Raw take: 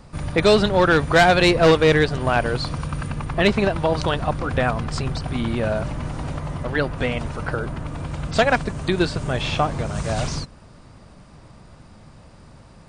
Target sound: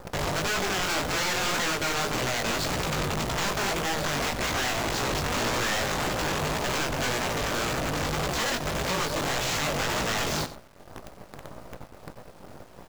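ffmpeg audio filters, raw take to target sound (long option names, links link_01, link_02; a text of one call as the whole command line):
ffmpeg -i in.wav -af "agate=range=-25dB:threshold=-42dB:ratio=16:detection=peak,equalizer=frequency=570:width=0.61:gain=14.5,acompressor=threshold=-11dB:ratio=12,alimiter=limit=-13dB:level=0:latency=1:release=27,acompressor=mode=upward:threshold=-22dB:ratio=2.5,aresample=16000,aeval=exprs='(mod(7.5*val(0)+1,2)-1)/7.5':channel_layout=same,aresample=44100,flanger=delay=16:depth=5.6:speed=1.8,acrusher=bits=6:dc=4:mix=0:aa=0.000001,asoftclip=type=tanh:threshold=-21.5dB,aecho=1:1:93:0.188" out.wav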